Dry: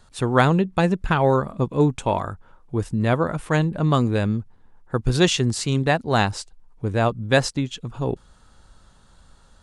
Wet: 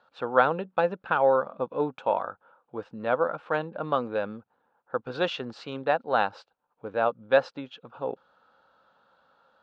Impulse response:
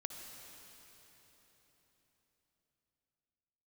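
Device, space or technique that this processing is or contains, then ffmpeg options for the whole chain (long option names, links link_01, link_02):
phone earpiece: -af "highpass=350,equalizer=frequency=370:width_type=q:width=4:gain=-6,equalizer=frequency=520:width_type=q:width=4:gain=8,equalizer=frequency=820:width_type=q:width=4:gain=4,equalizer=frequency=1400:width_type=q:width=4:gain=7,equalizer=frequency=2000:width_type=q:width=4:gain=-8,equalizer=frequency=3200:width_type=q:width=4:gain=-3,lowpass=frequency=3500:width=0.5412,lowpass=frequency=3500:width=1.3066,volume=-6dB"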